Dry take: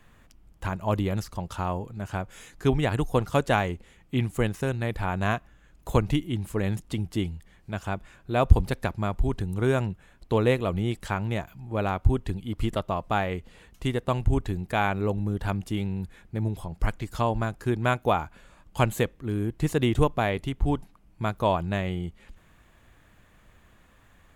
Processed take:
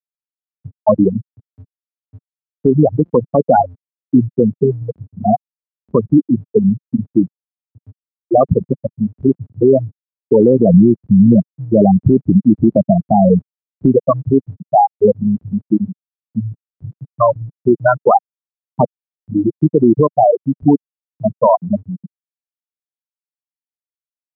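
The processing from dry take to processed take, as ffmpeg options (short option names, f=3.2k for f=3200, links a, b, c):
-filter_complex "[0:a]asplit=3[a][b][c];[a]afade=t=out:st=3.58:d=0.02[d];[b]lowshelf=f=71:g=6,afade=t=in:st=3.58:d=0.02,afade=t=out:st=4.82:d=0.02[e];[c]afade=t=in:st=4.82:d=0.02[f];[d][e][f]amix=inputs=3:normalize=0,asplit=3[g][h][i];[g]afade=t=out:st=10.4:d=0.02[j];[h]tiltshelf=f=780:g=9,afade=t=in:st=10.4:d=0.02,afade=t=out:st=13.93:d=0.02[k];[i]afade=t=in:st=13.93:d=0.02[l];[j][k][l]amix=inputs=3:normalize=0,asplit=3[m][n][o];[m]atrim=end=18.85,asetpts=PTS-STARTPTS,afade=t=out:st=18.846:d=0.004:c=hsin[p];[n]atrim=start=18.85:end=19.28,asetpts=PTS-STARTPTS,volume=0[q];[o]atrim=start=19.28,asetpts=PTS-STARTPTS,afade=t=in:d=0.004:c=hsin[r];[p][q][r]concat=n=3:v=0:a=1,afftfilt=real='re*gte(hypot(re,im),0.316)':imag='im*gte(hypot(re,im),0.316)':win_size=1024:overlap=0.75,highpass=f=180:w=0.5412,highpass=f=180:w=1.3066,alimiter=level_in=23dB:limit=-1dB:release=50:level=0:latency=1,volume=-1dB"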